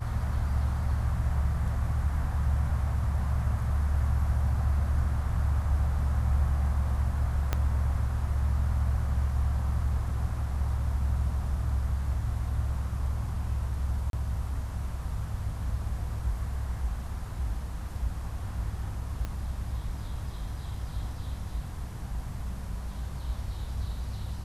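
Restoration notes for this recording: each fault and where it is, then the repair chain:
7.53 pop -13 dBFS
14.1–14.13 gap 32 ms
19.25 pop -21 dBFS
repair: de-click; interpolate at 14.1, 32 ms

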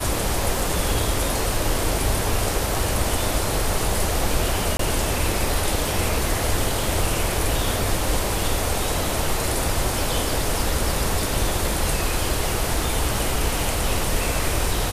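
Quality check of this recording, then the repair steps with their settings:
4.77–4.79 gap 23 ms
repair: interpolate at 4.77, 23 ms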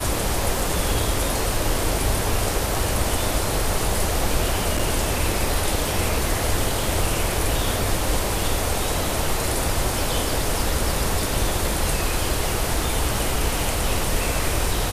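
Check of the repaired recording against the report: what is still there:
none

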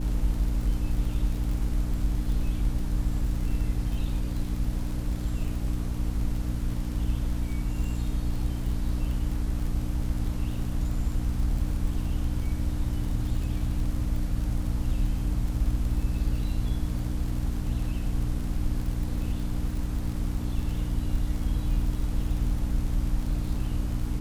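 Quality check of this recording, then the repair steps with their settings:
crackle 43/s -33 dBFS
hum 60 Hz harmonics 5 -32 dBFS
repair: de-click; de-hum 60 Hz, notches 5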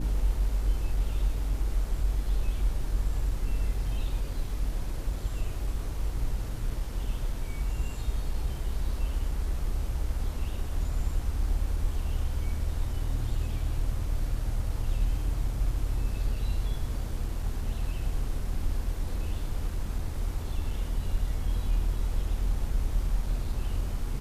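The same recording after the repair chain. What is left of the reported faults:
none

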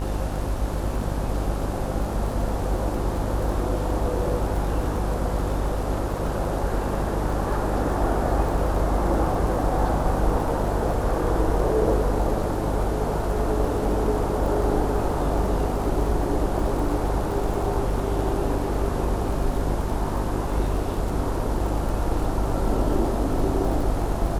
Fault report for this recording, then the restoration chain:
buzz 50 Hz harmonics 37 -28 dBFS
crackle 28/s -30 dBFS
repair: de-click; de-hum 50 Hz, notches 37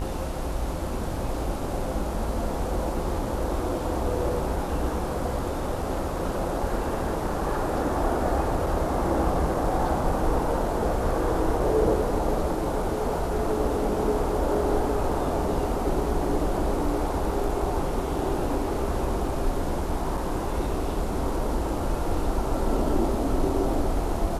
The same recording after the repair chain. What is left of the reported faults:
none

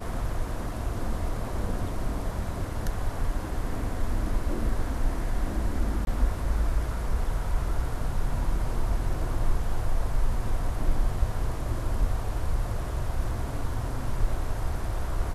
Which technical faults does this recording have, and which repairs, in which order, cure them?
6.05–6.07 gap 21 ms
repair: interpolate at 6.05, 21 ms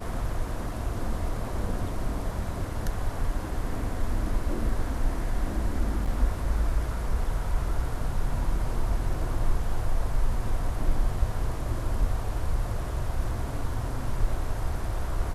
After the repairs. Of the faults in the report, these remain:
none

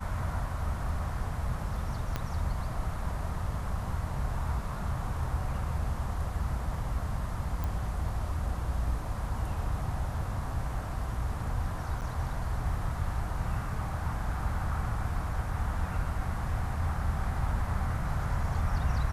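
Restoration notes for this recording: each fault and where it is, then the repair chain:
2.16 pop -17 dBFS
7.64 pop
12.01–12.02 gap 8.5 ms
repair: de-click; interpolate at 12.01, 8.5 ms

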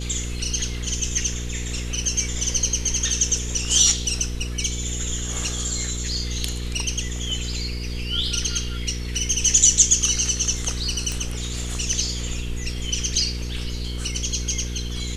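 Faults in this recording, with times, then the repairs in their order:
hum 60 Hz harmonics 8 -29 dBFS
11.12 pop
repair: de-click; de-hum 60 Hz, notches 8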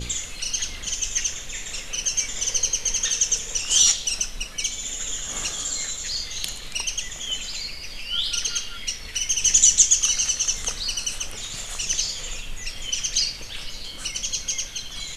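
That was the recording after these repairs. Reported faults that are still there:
none

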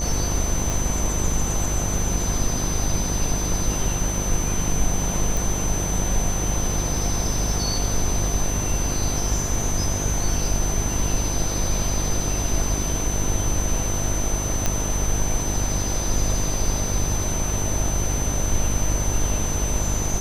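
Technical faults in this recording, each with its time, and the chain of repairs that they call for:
buzz 50 Hz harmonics 21 -27 dBFS
tone 6100 Hz -28 dBFS
0.7 pop
5.37 pop
14.66 pop -6 dBFS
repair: de-click; notch 6100 Hz, Q 30; de-hum 50 Hz, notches 21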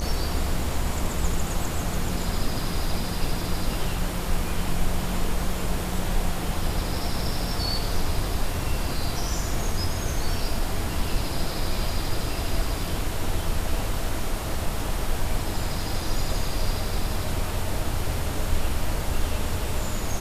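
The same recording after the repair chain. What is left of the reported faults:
none

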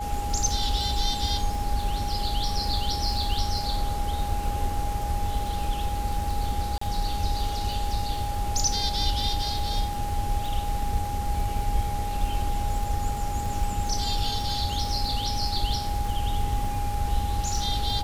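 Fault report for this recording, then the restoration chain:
crackle 48/s -31 dBFS
tone 820 Hz -31 dBFS
6.78–6.81 gap 34 ms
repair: de-click; notch 820 Hz, Q 30; interpolate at 6.78, 34 ms

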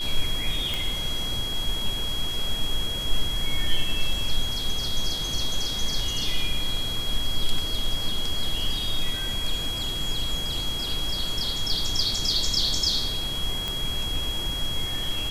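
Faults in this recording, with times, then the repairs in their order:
tone 3300 Hz -29 dBFS
0.74 pop
13.68 pop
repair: de-click; notch 3300 Hz, Q 30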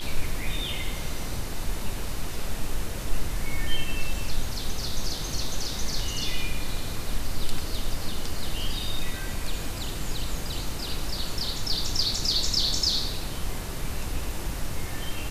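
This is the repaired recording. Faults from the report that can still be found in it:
none

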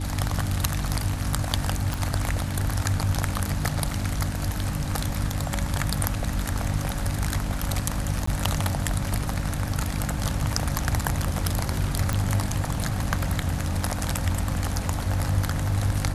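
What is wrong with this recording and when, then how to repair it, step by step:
hum 50 Hz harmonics 6 -31 dBFS
1.94 pop
8.26–8.27 gap 14 ms
12.13 pop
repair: de-click; de-hum 50 Hz, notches 6; interpolate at 8.26, 14 ms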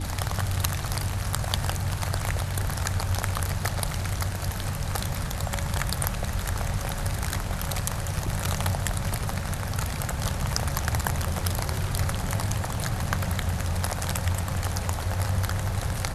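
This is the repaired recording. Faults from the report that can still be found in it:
none

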